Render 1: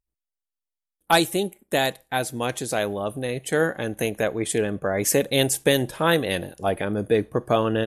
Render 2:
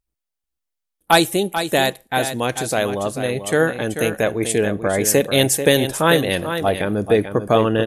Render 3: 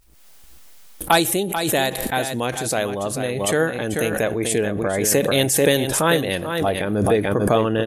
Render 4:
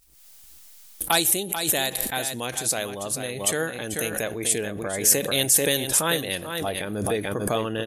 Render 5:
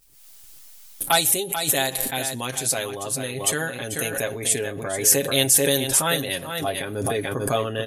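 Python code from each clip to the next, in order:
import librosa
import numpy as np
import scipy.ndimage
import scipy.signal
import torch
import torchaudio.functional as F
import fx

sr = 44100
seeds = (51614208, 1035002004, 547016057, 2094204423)

y1 = x + 10.0 ** (-9.0 / 20.0) * np.pad(x, (int(439 * sr / 1000.0), 0))[:len(x)]
y1 = y1 * librosa.db_to_amplitude(4.5)
y2 = fx.pre_swell(y1, sr, db_per_s=39.0)
y2 = y2 * librosa.db_to_amplitude(-3.0)
y3 = fx.high_shelf(y2, sr, hz=2800.0, db=12.0)
y3 = y3 * librosa.db_to_amplitude(-8.5)
y4 = y3 + 0.65 * np.pad(y3, (int(7.4 * sr / 1000.0), 0))[:len(y3)]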